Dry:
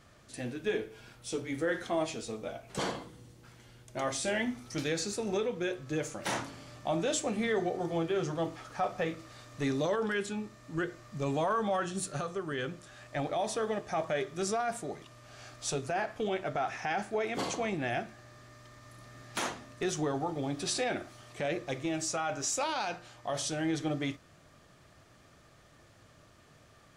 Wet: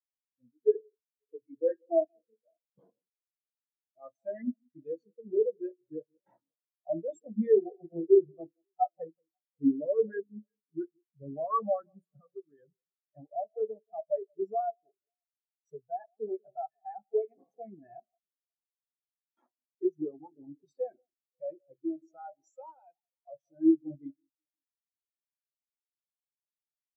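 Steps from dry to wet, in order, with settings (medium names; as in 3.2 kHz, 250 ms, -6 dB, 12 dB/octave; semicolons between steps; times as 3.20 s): in parallel at -10 dB: bit crusher 5-bit; on the sum: echo whose repeats swap between lows and highs 179 ms, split 1 kHz, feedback 69%, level -10.5 dB; spectral contrast expander 4:1; trim +5.5 dB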